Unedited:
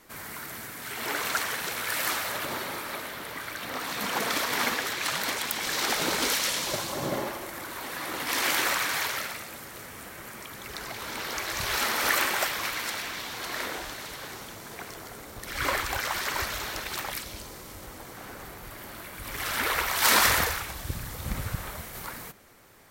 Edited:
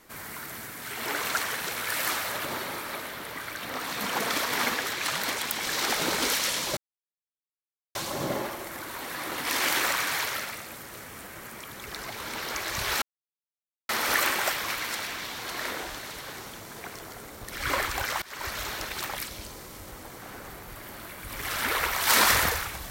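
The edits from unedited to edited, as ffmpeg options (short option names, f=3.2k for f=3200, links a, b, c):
-filter_complex "[0:a]asplit=4[a][b][c][d];[a]atrim=end=6.77,asetpts=PTS-STARTPTS,afade=t=out:st=6.766:d=0.004:c=hsin,apad=pad_dur=1.18[e];[b]atrim=start=6.77:end=11.84,asetpts=PTS-STARTPTS,afade=t=in:d=0.004:c=hsin,afade=t=out:st=5.066:d=0.004:c=hsin,apad=pad_dur=0.87[f];[c]atrim=start=11.84:end=16.17,asetpts=PTS-STARTPTS,afade=t=in:d=0.004:c=hsin,afade=t=out:st=4.326:d=0.004:c=hsin:silence=0.0668344[g];[d]atrim=start=16.17,asetpts=PTS-STARTPTS,afade=t=in:d=0.4:silence=0.0668344[h];[e][f][g][h]concat=n=4:v=0:a=1"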